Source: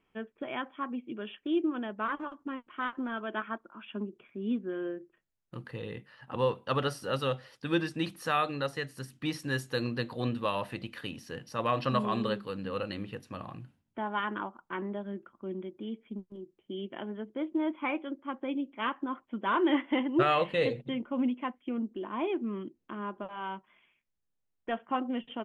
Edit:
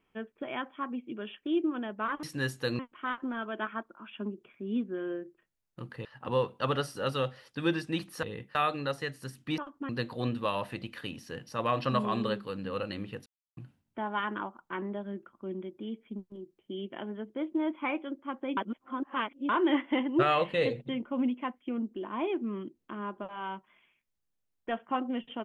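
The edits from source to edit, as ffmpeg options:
ffmpeg -i in.wav -filter_complex "[0:a]asplit=12[link_01][link_02][link_03][link_04][link_05][link_06][link_07][link_08][link_09][link_10][link_11][link_12];[link_01]atrim=end=2.232[link_13];[link_02]atrim=start=9.328:end=9.892[link_14];[link_03]atrim=start=2.538:end=5.802[link_15];[link_04]atrim=start=6.118:end=8.302[link_16];[link_05]atrim=start=5.798:end=6.122[link_17];[link_06]atrim=start=8.298:end=9.332[link_18];[link_07]atrim=start=2.228:end=2.542[link_19];[link_08]atrim=start=9.888:end=13.26,asetpts=PTS-STARTPTS,afade=type=out:start_time=3.368:duration=0.004:curve=hsin[link_20];[link_09]atrim=start=13.26:end=13.57,asetpts=PTS-STARTPTS,volume=0[link_21];[link_10]atrim=start=13.57:end=18.572,asetpts=PTS-STARTPTS,afade=type=in:duration=0.004:curve=hsin[link_22];[link_11]atrim=start=18.568:end=19.492,asetpts=PTS-STARTPTS,areverse[link_23];[link_12]atrim=start=19.488[link_24];[link_13][link_14]acrossfade=duration=0.004:curve1=hsin:curve2=hsin[link_25];[link_25][link_15]acrossfade=duration=0.004:curve1=hsin:curve2=hsin[link_26];[link_26][link_16]acrossfade=duration=0.004:curve1=hsin:curve2=hsin[link_27];[link_27][link_17]acrossfade=duration=0.004:curve1=hsin:curve2=hsin[link_28];[link_28][link_18]acrossfade=duration=0.004:curve1=hsin:curve2=hsin[link_29];[link_29][link_19]acrossfade=duration=0.004:curve1=hsin:curve2=hsin[link_30];[link_20][link_21][link_22]concat=n=3:v=0:a=1[link_31];[link_30][link_31]acrossfade=duration=0.004:curve1=hsin:curve2=hsin[link_32];[link_32][link_23]acrossfade=duration=0.004:curve1=hsin:curve2=hsin[link_33];[link_33][link_24]acrossfade=duration=0.004:curve1=hsin:curve2=hsin" out.wav

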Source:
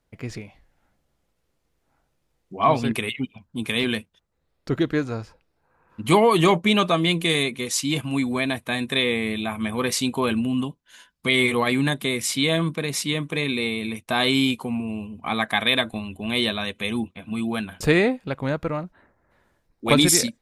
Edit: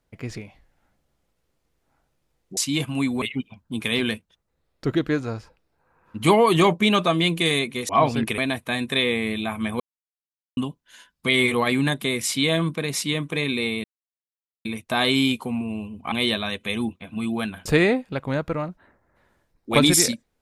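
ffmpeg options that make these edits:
ffmpeg -i in.wav -filter_complex "[0:a]asplit=9[link_01][link_02][link_03][link_04][link_05][link_06][link_07][link_08][link_09];[link_01]atrim=end=2.572[link_10];[link_02]atrim=start=7.728:end=8.382[link_11];[link_03]atrim=start=3.058:end=7.732[link_12];[link_04]atrim=start=2.568:end=3.062[link_13];[link_05]atrim=start=8.378:end=9.8,asetpts=PTS-STARTPTS,afade=type=out:start_time=1.418:duration=0.004:curve=hsin[link_14];[link_06]atrim=start=9.8:end=10.57,asetpts=PTS-STARTPTS,volume=0[link_15];[link_07]atrim=start=10.57:end=13.84,asetpts=PTS-STARTPTS,afade=type=in:duration=0.004:curve=hsin,afade=type=out:start_time=3.266:duration=0.004:curve=hsin,apad=pad_dur=0.81[link_16];[link_08]atrim=start=13.84:end=15.312,asetpts=PTS-STARTPTS,afade=type=in:duration=0.004:curve=hsin[link_17];[link_09]atrim=start=16.268[link_18];[link_10][link_11]acrossfade=duration=0.004:curve1=hsin:curve2=hsin[link_19];[link_19][link_12]acrossfade=duration=0.004:curve1=hsin:curve2=hsin[link_20];[link_20][link_13]acrossfade=duration=0.004:curve1=hsin:curve2=hsin[link_21];[link_14][link_15][link_16][link_17]concat=n=4:v=0:a=1[link_22];[link_21][link_22]acrossfade=duration=0.004:curve1=hsin:curve2=hsin[link_23];[link_23][link_18]acrossfade=duration=0.004:curve1=hsin:curve2=hsin" out.wav

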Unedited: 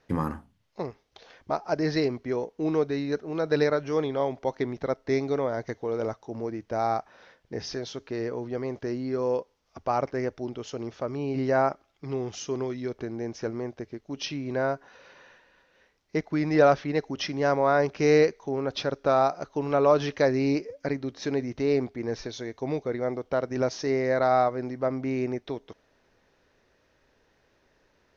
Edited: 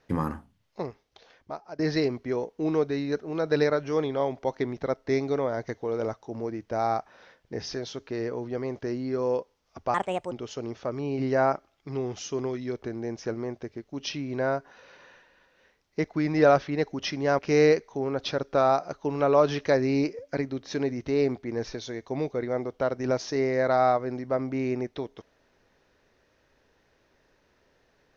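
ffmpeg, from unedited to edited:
ffmpeg -i in.wav -filter_complex "[0:a]asplit=5[link_01][link_02][link_03][link_04][link_05];[link_01]atrim=end=1.79,asetpts=PTS-STARTPTS,afade=type=out:start_time=0.81:duration=0.98:silence=0.149624[link_06];[link_02]atrim=start=1.79:end=9.944,asetpts=PTS-STARTPTS,afade=type=in:duration=0.004:curve=hsin:silence=0.149624[link_07];[link_03]atrim=start=9.94:end=10.48,asetpts=PTS-STARTPTS,asetrate=63504,aresample=44100[link_08];[link_04]atrim=start=10.476:end=17.552[link_09];[link_05]atrim=start=17.898[link_10];[link_06][link_07]concat=n=2:v=0:a=1[link_11];[link_11][link_08]acrossfade=duration=0.004:curve1=hsin:curve2=hsin[link_12];[link_12][link_09]acrossfade=duration=0.004:curve1=hsin:curve2=hsin[link_13];[link_13][link_10]acrossfade=duration=0.004:curve1=hsin:curve2=hsin" out.wav

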